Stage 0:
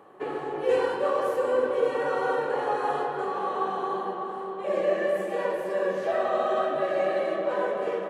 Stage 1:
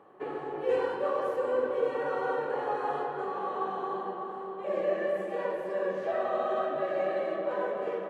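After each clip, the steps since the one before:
high-shelf EQ 4,500 Hz −10.5 dB
level −4 dB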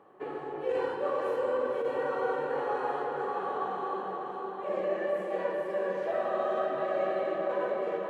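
feedback delay with all-pass diffusion 534 ms, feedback 47%, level −5.5 dB
compressor whose output falls as the input rises −26 dBFS, ratio −0.5
level −1.5 dB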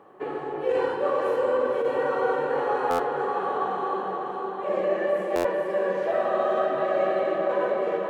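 buffer that repeats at 0:02.90/0:05.35, samples 512, times 7
level +6 dB

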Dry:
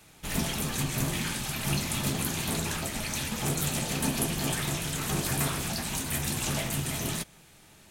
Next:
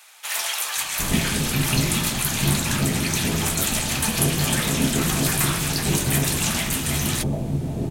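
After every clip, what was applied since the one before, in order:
multiband delay without the direct sound highs, lows 760 ms, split 720 Hz
level +8.5 dB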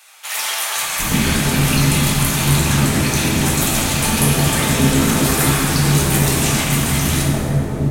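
dense smooth reverb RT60 3.3 s, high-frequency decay 0.4×, DRR −4 dB
level +1 dB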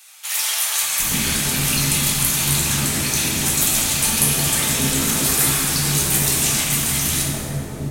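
high-shelf EQ 2,600 Hz +12 dB
level −8.5 dB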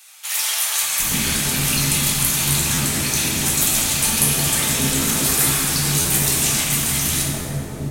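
buffer that repeats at 0:02.74/0:06.01/0:07.41, samples 512, times 2

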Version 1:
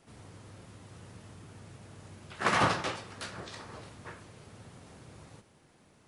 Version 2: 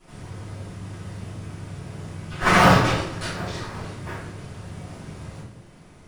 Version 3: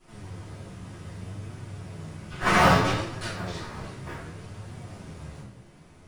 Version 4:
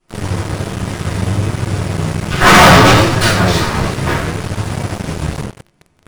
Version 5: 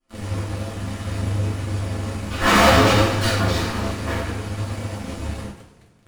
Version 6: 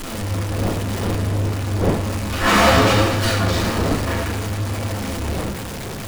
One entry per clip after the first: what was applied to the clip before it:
in parallel at −10 dB: sample-and-hold swept by an LFO 41×, swing 100% 1.4 Hz; on the sum: convolution reverb RT60 0.60 s, pre-delay 3 ms, DRR −11 dB; level −3 dB
flanger 0.63 Hz, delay 7.7 ms, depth 8.4 ms, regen +40%
leveller curve on the samples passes 5; level +4 dB
dynamic equaliser 380 Hz, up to +4 dB, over −27 dBFS, Q 2.2; coupled-rooms reverb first 0.21 s, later 1.7 s, from −18 dB, DRR −4 dB; level −14.5 dB
converter with a step at zero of −23 dBFS; wind on the microphone 430 Hz −28 dBFS; level −1 dB

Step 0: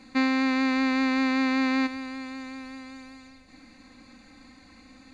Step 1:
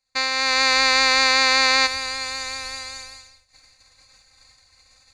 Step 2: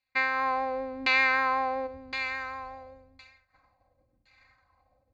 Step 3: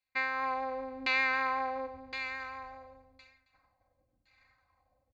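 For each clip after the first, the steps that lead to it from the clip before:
automatic gain control gain up to 8 dB; downward expander −32 dBFS; drawn EQ curve 120 Hz 0 dB, 250 Hz −27 dB, 500 Hz −4 dB, 3,000 Hz +1 dB, 5,000 Hz +12 dB; level +4 dB
brickwall limiter −7 dBFS, peak gain reduction 3.5 dB; auto-filter low-pass saw down 0.94 Hz 280–3,000 Hz; notch comb filter 450 Hz; level −4.5 dB
single-tap delay 270 ms −17 dB; level −5.5 dB

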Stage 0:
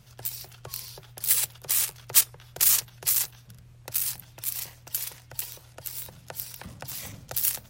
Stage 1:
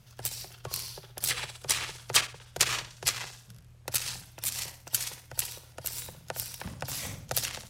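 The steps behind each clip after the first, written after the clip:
flutter between parallel walls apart 10.4 metres, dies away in 0.44 s
treble cut that deepens with the level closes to 2,800 Hz, closed at −19.5 dBFS
expander for the loud parts 1.5 to 1, over −49 dBFS
level +8.5 dB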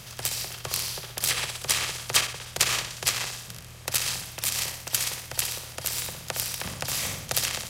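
compressor on every frequency bin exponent 0.6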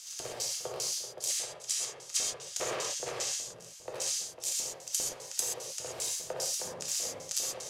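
auto-filter band-pass square 2.5 Hz 500–6,600 Hz
speech leveller within 5 dB 0.5 s
reverb whose tail is shaped and stops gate 150 ms flat, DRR −2 dB
level −1.5 dB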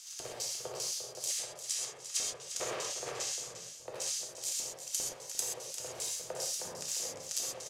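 single-tap delay 350 ms −11 dB
level −3 dB

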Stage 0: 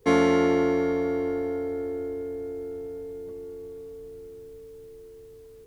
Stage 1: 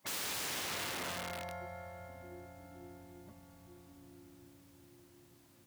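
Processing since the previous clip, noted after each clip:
gate on every frequency bin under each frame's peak −15 dB weak
wrap-around overflow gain 32 dB
high-pass filter 90 Hz
level −2 dB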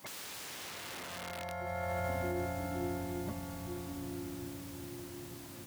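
compressor whose output falls as the input rises −50 dBFS, ratio −1
level +10.5 dB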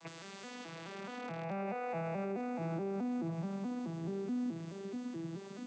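vocoder with an arpeggio as carrier minor triad, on E3, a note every 214 ms
brickwall limiter −34.5 dBFS, peak gain reduction 7.5 dB
one half of a high-frequency compander encoder only
level +4 dB

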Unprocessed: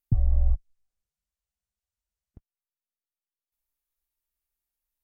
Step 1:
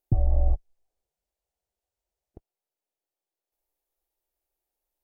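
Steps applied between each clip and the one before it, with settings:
flat-topped bell 520 Hz +12.5 dB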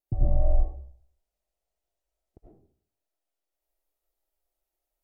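pitch vibrato 0.6 Hz 9 cents
comb and all-pass reverb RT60 0.55 s, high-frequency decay 0.45×, pre-delay 55 ms, DRR −6.5 dB
level −7 dB

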